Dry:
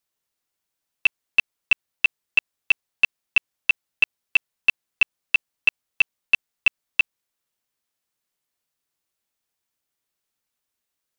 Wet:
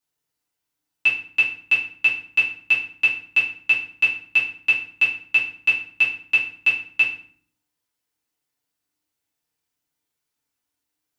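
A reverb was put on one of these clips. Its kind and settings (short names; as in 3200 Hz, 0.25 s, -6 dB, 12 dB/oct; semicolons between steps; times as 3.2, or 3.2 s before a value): FDN reverb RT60 0.51 s, low-frequency decay 1.55×, high-frequency decay 0.8×, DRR -6.5 dB; gain -6.5 dB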